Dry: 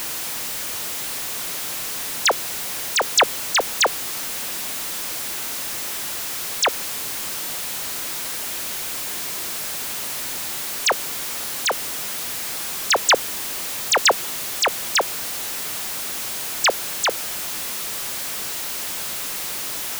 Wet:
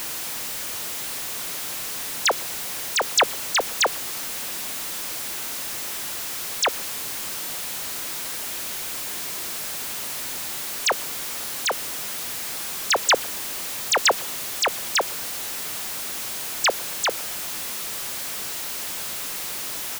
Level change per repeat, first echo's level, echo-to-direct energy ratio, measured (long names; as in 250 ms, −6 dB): −7.5 dB, −24.0 dB, −23.0 dB